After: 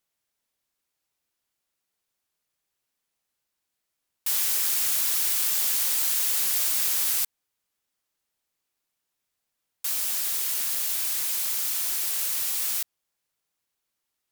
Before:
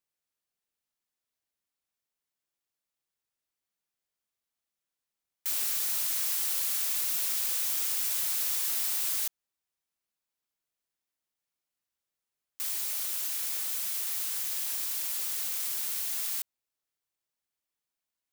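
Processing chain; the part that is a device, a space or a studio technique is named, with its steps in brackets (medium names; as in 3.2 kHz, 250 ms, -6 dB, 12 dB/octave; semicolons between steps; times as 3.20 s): nightcore (tape speed +28%); trim +8 dB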